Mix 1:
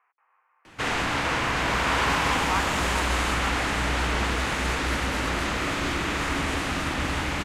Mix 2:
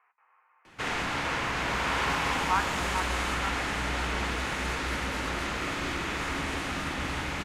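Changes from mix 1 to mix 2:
background -6.5 dB; reverb: on, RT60 1.0 s

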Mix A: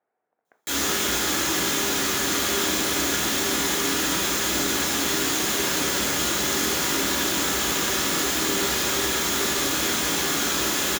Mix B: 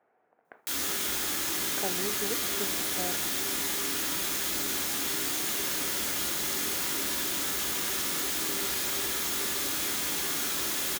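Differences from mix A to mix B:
speech +10.0 dB; background: send -11.5 dB

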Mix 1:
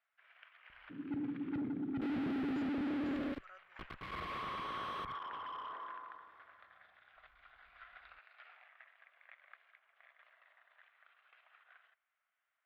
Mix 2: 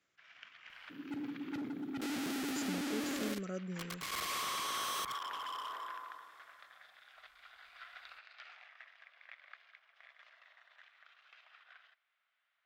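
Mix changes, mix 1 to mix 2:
speech: remove high-pass 980 Hz 24 dB/octave; second sound: add bass shelf 170 Hz -11.5 dB; master: remove distance through air 470 m

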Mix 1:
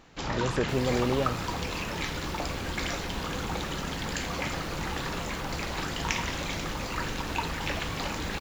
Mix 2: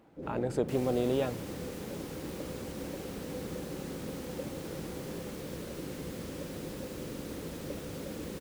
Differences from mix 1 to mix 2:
first sound: add elliptic low-pass 550 Hz; master: add high-pass 220 Hz 6 dB/octave

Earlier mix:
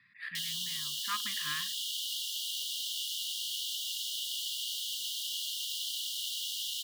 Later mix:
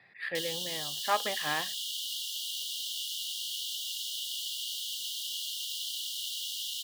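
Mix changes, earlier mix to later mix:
speech +4.5 dB; master: remove brick-wall FIR band-stop 290–1000 Hz

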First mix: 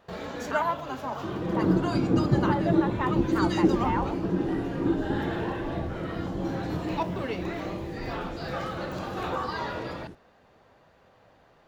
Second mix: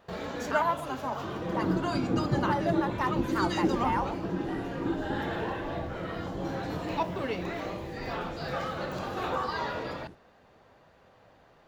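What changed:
speech: remove brick-wall FIR low-pass 4 kHz; second sound -5.5 dB

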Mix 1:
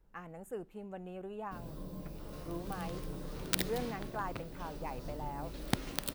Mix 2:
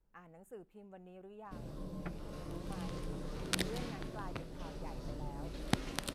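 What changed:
speech -9.0 dB; first sound: add Bessel low-pass 9.2 kHz, order 8; second sound +10.5 dB

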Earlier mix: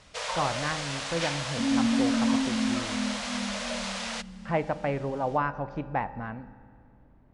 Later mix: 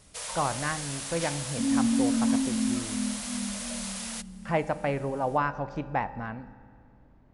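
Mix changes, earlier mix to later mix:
first sound -9.0 dB; master: remove distance through air 140 m

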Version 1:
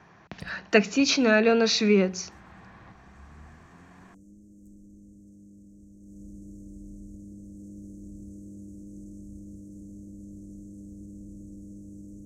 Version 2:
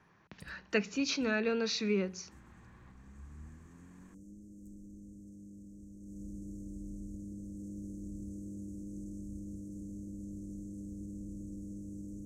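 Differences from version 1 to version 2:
speech -10.5 dB; master: add peaking EQ 700 Hz -8 dB 0.29 oct

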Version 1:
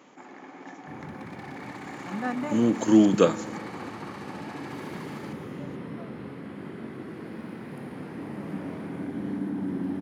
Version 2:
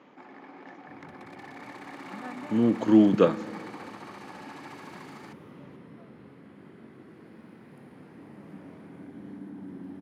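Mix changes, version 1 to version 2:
speech: add distance through air 230 m; first sound: send off; second sound -11.0 dB

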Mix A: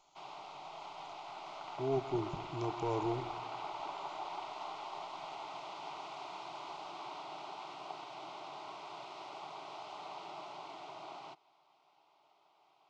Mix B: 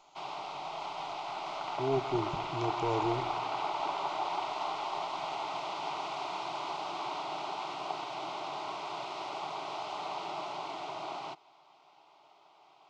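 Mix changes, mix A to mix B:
speech +3.0 dB; background +8.5 dB

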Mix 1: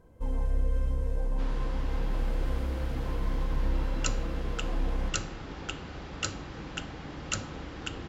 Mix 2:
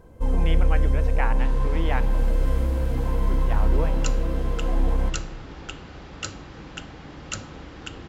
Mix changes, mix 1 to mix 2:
speech: unmuted; first sound +8.5 dB

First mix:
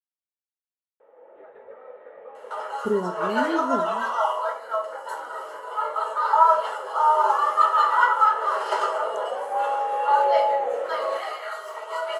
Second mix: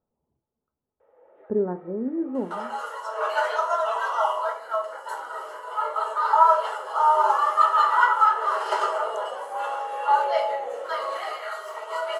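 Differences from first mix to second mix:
speech: entry -1.35 s; first sound -6.0 dB

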